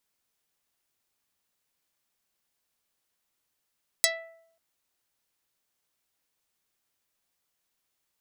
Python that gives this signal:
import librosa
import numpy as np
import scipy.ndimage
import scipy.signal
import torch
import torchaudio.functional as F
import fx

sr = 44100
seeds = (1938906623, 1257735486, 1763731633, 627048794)

y = fx.pluck(sr, length_s=0.54, note=76, decay_s=0.73, pick=0.46, brightness='dark')